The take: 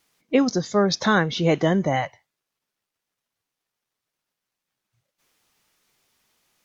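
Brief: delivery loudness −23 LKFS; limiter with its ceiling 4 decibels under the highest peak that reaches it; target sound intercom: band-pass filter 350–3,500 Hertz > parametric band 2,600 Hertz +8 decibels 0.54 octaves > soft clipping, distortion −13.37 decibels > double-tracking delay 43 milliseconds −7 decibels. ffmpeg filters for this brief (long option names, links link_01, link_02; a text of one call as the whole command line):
ffmpeg -i in.wav -filter_complex "[0:a]alimiter=limit=-10.5dB:level=0:latency=1,highpass=350,lowpass=3500,equalizer=frequency=2600:width_type=o:width=0.54:gain=8,asoftclip=threshold=-18.5dB,asplit=2[link_01][link_02];[link_02]adelay=43,volume=-7dB[link_03];[link_01][link_03]amix=inputs=2:normalize=0,volume=4dB" out.wav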